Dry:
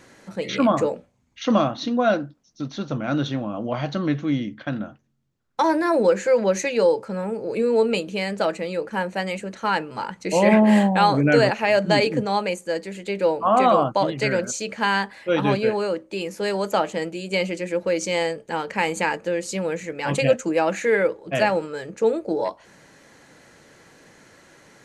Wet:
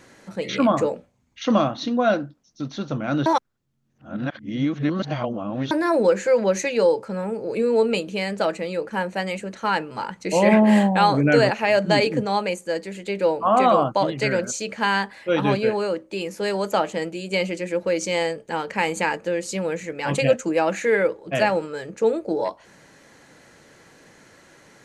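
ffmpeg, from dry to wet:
-filter_complex "[0:a]asplit=3[s0][s1][s2];[s0]atrim=end=3.262[s3];[s1]atrim=start=3.258:end=5.712,asetpts=PTS-STARTPTS,areverse[s4];[s2]atrim=start=5.708[s5];[s3][s4]acrossfade=d=0.004:c1=hsin:c2=hsin[s6];[s6][s5]acrossfade=d=0.004:c1=hsin:c2=hsin"

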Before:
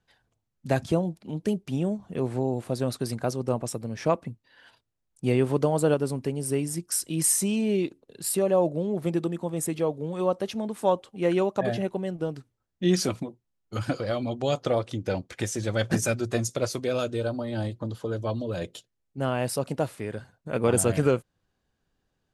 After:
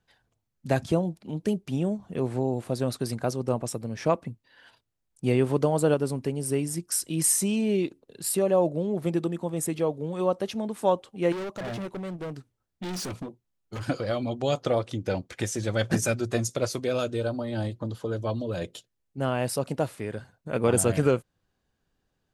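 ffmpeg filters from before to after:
-filter_complex "[0:a]asettb=1/sr,asplit=3[s0][s1][s2];[s0]atrim=end=11.324[s3];[s1]atrim=start=11.32:end=13.84,asetpts=PTS-STARTPTS,afade=t=in:d=0.004:c=qsin,afade=t=out:st=2.516:d=0.004:c=qsin,volume=37.6,asoftclip=hard,volume=0.0266[s4];[s2]atrim=start=13.836[s5];[s3][s4]acrossfade=d=0.004:c1=hsin:c2=qsin[s6];[s6][s5]acrossfade=d=0.004:c1=qsin:c2=hsin"

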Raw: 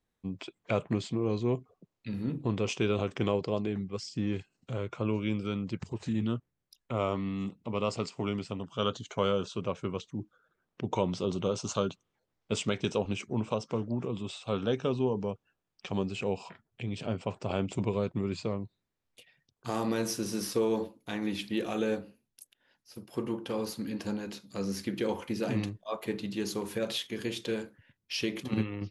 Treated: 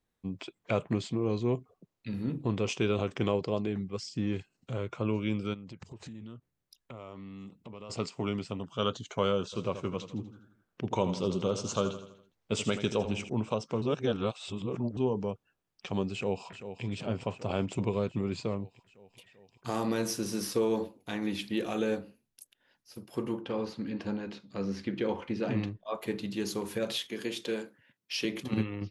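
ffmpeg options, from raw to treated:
-filter_complex "[0:a]asplit=3[s0][s1][s2];[s0]afade=t=out:st=5.53:d=0.02[s3];[s1]acompressor=threshold=0.00794:ratio=6:attack=3.2:release=140:knee=1:detection=peak,afade=t=in:st=5.53:d=0.02,afade=t=out:st=7.89:d=0.02[s4];[s2]afade=t=in:st=7.89:d=0.02[s5];[s3][s4][s5]amix=inputs=3:normalize=0,asplit=3[s6][s7][s8];[s6]afade=t=out:st=9.52:d=0.02[s9];[s7]aecho=1:1:82|164|246|328|410:0.282|0.135|0.0649|0.0312|0.015,afade=t=in:st=9.52:d=0.02,afade=t=out:st=13.28:d=0.02[s10];[s8]afade=t=in:st=13.28:d=0.02[s11];[s9][s10][s11]amix=inputs=3:normalize=0,asplit=2[s12][s13];[s13]afade=t=in:st=16.13:d=0.01,afade=t=out:st=16.84:d=0.01,aecho=0:1:390|780|1170|1560|1950|2340|2730|3120|3510|3900|4290|4680:0.298538|0.223904|0.167928|0.125946|0.0944594|0.0708445|0.0531334|0.03985|0.0298875|0.0224157|0.0168117|0.0126088[s14];[s12][s14]amix=inputs=2:normalize=0,asettb=1/sr,asplit=3[s15][s16][s17];[s15]atrim=end=23.414[s18];[s16]atrim=start=23.41:end=25.95,asetpts=PTS-STARTPTS,afade=t=in:d=0.004:c=qsin,afade=t=out:st=2.536:d=0.004:c=qsin,lowpass=3600[s19];[s17]atrim=start=25.946[s20];[s18][s19]acrossfade=d=0.004:c1=hsin:c2=qsin[s21];[s21][s20]acrossfade=d=0.004:c1=qsin:c2=hsin,asettb=1/sr,asplit=3[s22][s23][s24];[s22]atrim=end=27.084[s25];[s23]atrim=start=27.08:end=28.25,asetpts=PTS-STARTPTS,afade=t=in:d=0.004:c=qsin,afade=t=out:st=1.166:d=0.004:c=qsin,highpass=200[s26];[s24]atrim=start=28.246[s27];[s25][s26]acrossfade=d=0.004:c1=hsin:c2=qsin[s28];[s28][s27]acrossfade=d=0.004:c1=qsin:c2=hsin,asplit=3[s29][s30][s31];[s29]atrim=end=13.822[s32];[s30]atrim=start=13.818:end=14.972,asetpts=PTS-STARTPTS,areverse[s33];[s31]atrim=start=14.968[s34];[s32][s33]acrossfade=d=0.004:c1=hsin:c2=hsin[s35];[s35][s34]acrossfade=d=0.004:c1=hsin:c2=hsin"

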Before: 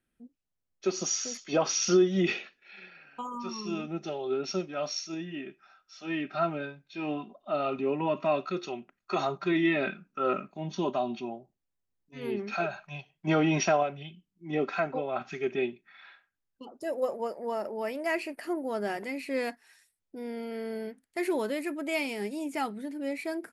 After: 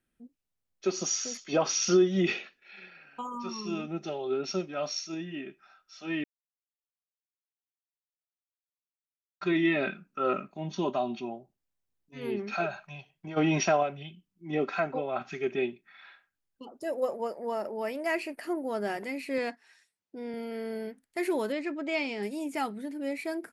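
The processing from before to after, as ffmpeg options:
-filter_complex "[0:a]asplit=3[s0][s1][s2];[s0]afade=t=out:st=12.85:d=0.02[s3];[s1]acompressor=threshold=0.0112:ratio=4:attack=3.2:release=140:knee=1:detection=peak,afade=t=in:st=12.85:d=0.02,afade=t=out:st=13.36:d=0.02[s4];[s2]afade=t=in:st=13.36:d=0.02[s5];[s3][s4][s5]amix=inputs=3:normalize=0,asettb=1/sr,asplit=3[s6][s7][s8];[s6]atrim=end=19.384[s9];[s7]atrim=start=19.38:end=20.34,asetpts=PTS-STARTPTS,afade=t=in:d=0.004:c=qsin,afade=t=out:st=0.956:d=0.004:c=qsin,highpass=140,lowpass=6600[s10];[s8]atrim=start=20.336[s11];[s9][s10]acrossfade=d=0.004:c1=hsin:c2=qsin[s12];[s12][s11]acrossfade=d=0.004:c1=qsin:c2=hsin,asettb=1/sr,asplit=3[s13][s14][s15];[s13]atrim=end=21.524[s16];[s14]atrim=start=21.52:end=22.23,asetpts=PTS-STARTPTS,afade=t=in:d=0.004:c=qsin,afade=t=out:st=0.706:d=0.004:c=qsin,lowpass=f=5900:w=0.5412,lowpass=f=5900:w=1.3066[s17];[s15]atrim=start=22.226[s18];[s16][s17]acrossfade=d=0.004:c1=hsin:c2=qsin[s19];[s19][s18]acrossfade=d=0.004:c1=qsin:c2=hsin,asplit=3[s20][s21][s22];[s20]atrim=end=6.24,asetpts=PTS-STARTPTS,afade=t=out:st=6.236:d=0.004:c=hsin[s23];[s21]atrim=start=6.24:end=9.41,asetpts=PTS-STARTPTS,volume=0[s24];[s22]atrim=start=9.41,asetpts=PTS-STARTPTS,afade=t=in:d=0.004:c=hsin[s25];[s23][s24][s25]concat=n=3:v=0:a=1"

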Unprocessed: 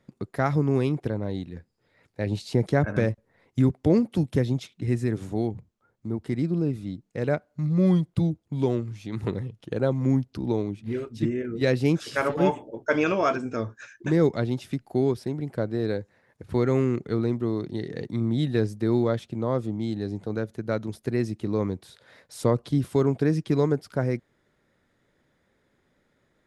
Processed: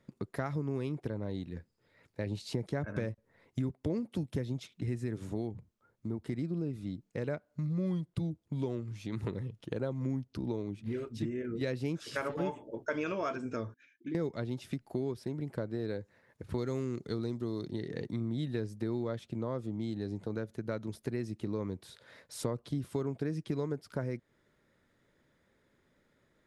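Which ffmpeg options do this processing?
-filter_complex "[0:a]asettb=1/sr,asplit=3[s0][s1][s2];[s0]atrim=end=13.744[s3];[s1]atrim=start=13.74:end=14.15,asetpts=PTS-STARTPTS,afade=t=in:d=0.004:c=qsin,afade=t=out:st=0.406:d=0.004:c=qsin,asplit=3[s4][s5][s6];[s4]bandpass=f=270:t=q:w=8,volume=1[s7];[s5]bandpass=f=2290:t=q:w=8,volume=0.501[s8];[s6]bandpass=f=3010:t=q:w=8,volume=0.355[s9];[s7][s8][s9]amix=inputs=3:normalize=0[s10];[s2]atrim=start=14.146[s11];[s3][s10]acrossfade=d=0.004:c1=hsin:c2=qsin[s12];[s12][s11]acrossfade=d=0.004:c1=qsin:c2=hsin,asettb=1/sr,asplit=3[s13][s14][s15];[s13]atrim=end=16.584[s16];[s14]atrim=start=16.58:end=17.68,asetpts=PTS-STARTPTS,afade=t=in:d=0.004:c=qsin,afade=t=out:st=1.096:d=0.004:c=qsin,highshelf=f=3200:t=q:w=1.5:g=7[s17];[s15]atrim=start=17.676[s18];[s16][s17]acrossfade=d=0.004:c1=hsin:c2=qsin[s19];[s19][s18]acrossfade=d=0.004:c1=qsin:c2=hsin,bandreject=f=760:w=12,acompressor=threshold=0.0282:ratio=3,volume=0.75"

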